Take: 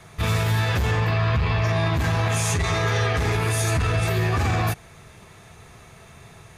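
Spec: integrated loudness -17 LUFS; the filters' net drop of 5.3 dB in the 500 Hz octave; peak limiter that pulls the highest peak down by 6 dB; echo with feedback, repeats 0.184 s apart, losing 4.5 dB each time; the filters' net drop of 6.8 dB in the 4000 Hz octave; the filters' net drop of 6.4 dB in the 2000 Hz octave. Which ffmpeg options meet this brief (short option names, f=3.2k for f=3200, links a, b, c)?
-af "equalizer=f=500:t=o:g=-7,equalizer=f=2k:t=o:g=-6,equalizer=f=4k:t=o:g=-6.5,alimiter=limit=-19.5dB:level=0:latency=1,aecho=1:1:184|368|552|736|920|1104|1288|1472|1656:0.596|0.357|0.214|0.129|0.0772|0.0463|0.0278|0.0167|0.01,volume=10.5dB"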